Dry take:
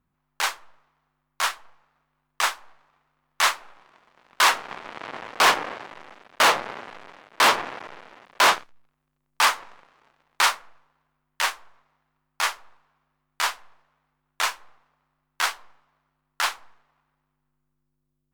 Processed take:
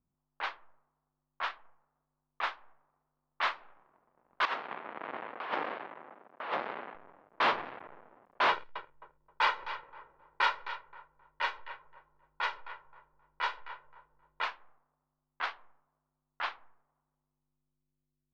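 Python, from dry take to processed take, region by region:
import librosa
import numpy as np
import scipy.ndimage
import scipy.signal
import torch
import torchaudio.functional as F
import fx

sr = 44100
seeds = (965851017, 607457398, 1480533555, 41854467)

y = fx.chain(x, sr, fx.highpass(hz=200.0, slope=12),
    fx.over_compress(threshold_db=-25.0, ratio=-1.0), at=(4.45, 6.95))
y = fx.chain(y, sr, fx.law_mismatch(coded='mu'),
    fx.comb(ms=2.1, depth=0.65),
    fx.echo_feedback(ms=264, feedback_pct=31, wet_db=-12.0), at=(8.49, 14.44))
y = scipy.signal.sosfilt(scipy.signal.butter(4, 4100.0, 'lowpass', fs=sr, output='sos'), y)
y = fx.env_lowpass(y, sr, base_hz=910.0, full_db=-18.5)
y = fx.high_shelf(y, sr, hz=2900.0, db=-7.5)
y = y * 10.0 ** (-8.0 / 20.0)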